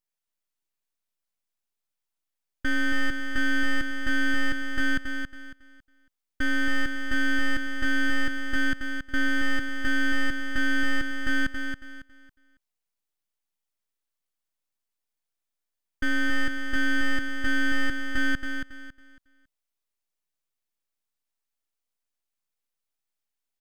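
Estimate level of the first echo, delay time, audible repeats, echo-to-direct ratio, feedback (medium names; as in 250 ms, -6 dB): -6.5 dB, 276 ms, 3, -6.0 dB, 28%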